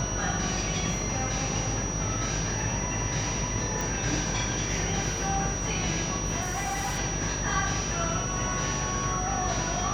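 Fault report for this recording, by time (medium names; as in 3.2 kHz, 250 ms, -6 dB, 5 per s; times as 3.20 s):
buzz 50 Hz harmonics 26 -34 dBFS
whine 5.8 kHz -33 dBFS
3.81 s: pop
6.41–6.99 s: clipped -26.5 dBFS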